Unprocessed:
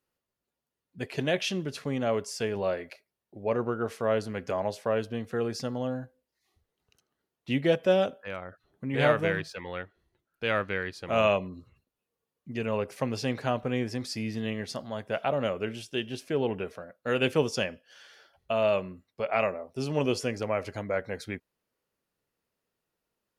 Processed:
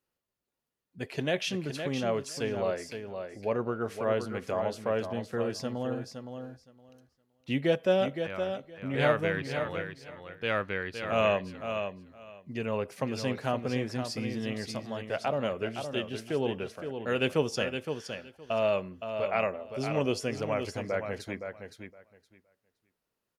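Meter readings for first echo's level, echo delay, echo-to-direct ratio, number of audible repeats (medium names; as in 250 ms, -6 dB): -7.5 dB, 516 ms, -7.5 dB, 2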